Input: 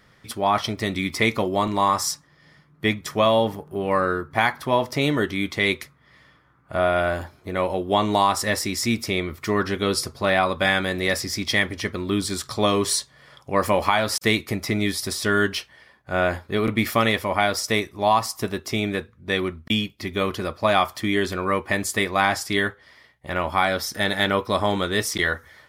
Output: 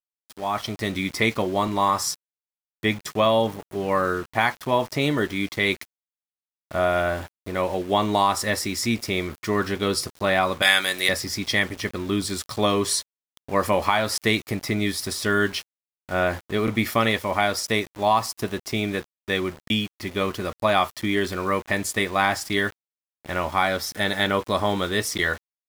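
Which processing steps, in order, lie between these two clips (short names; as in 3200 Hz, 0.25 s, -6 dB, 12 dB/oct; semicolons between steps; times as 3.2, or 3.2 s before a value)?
opening faded in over 0.88 s; 10.62–11.09 tilt +4.5 dB/oct; sample gate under -36 dBFS; gain -1 dB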